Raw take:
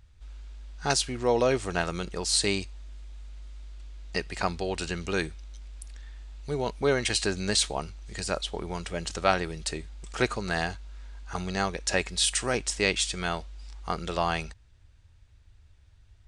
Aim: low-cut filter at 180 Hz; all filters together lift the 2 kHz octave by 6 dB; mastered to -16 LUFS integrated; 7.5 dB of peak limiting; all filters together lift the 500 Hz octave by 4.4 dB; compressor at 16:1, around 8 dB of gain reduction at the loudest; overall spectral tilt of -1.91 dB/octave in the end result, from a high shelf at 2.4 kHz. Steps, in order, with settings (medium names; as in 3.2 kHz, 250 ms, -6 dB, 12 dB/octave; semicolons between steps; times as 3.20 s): high-pass 180 Hz; peaking EQ 500 Hz +5 dB; peaking EQ 2 kHz +5 dB; treble shelf 2.4 kHz +5 dB; compression 16:1, threshold -22 dBFS; trim +14 dB; peak limiter -2 dBFS